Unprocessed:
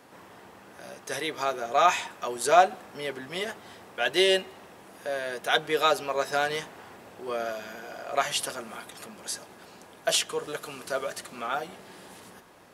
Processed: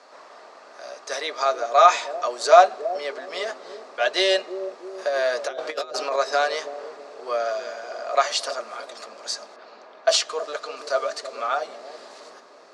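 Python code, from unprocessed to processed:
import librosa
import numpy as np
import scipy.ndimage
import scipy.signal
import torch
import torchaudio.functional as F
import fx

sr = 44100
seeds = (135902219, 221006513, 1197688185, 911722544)

y = fx.env_lowpass(x, sr, base_hz=2800.0, full_db=-26.0, at=(9.56, 10.77))
y = fx.high_shelf(y, sr, hz=4100.0, db=8.5)
y = fx.over_compress(y, sr, threshold_db=-30.0, ratio=-0.5, at=(4.98, 6.16))
y = fx.cabinet(y, sr, low_hz=310.0, low_slope=24, high_hz=6500.0, hz=(330.0, 630.0, 1200.0, 3100.0, 4400.0), db=(-6, 10, 8, -5, 6))
y = fx.echo_bbd(y, sr, ms=325, stages=1024, feedback_pct=60, wet_db=-6)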